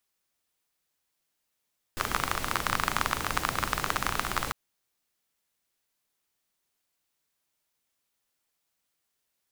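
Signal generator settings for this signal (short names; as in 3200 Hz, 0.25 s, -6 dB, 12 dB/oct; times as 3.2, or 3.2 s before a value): rain from filtered ticks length 2.55 s, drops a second 27, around 1200 Hz, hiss -3 dB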